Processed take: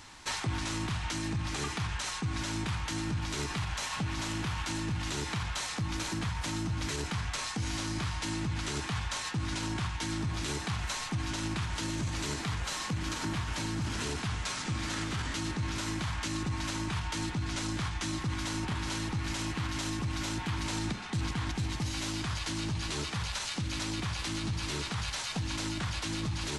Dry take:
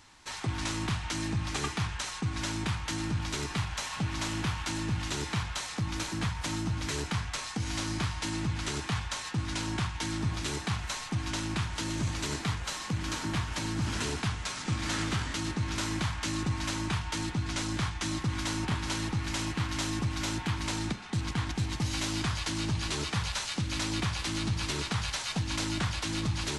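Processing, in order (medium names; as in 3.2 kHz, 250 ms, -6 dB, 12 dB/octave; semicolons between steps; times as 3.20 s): peak limiter -27 dBFS, peak gain reduction 7.5 dB; gain riding 0.5 s; trim +2 dB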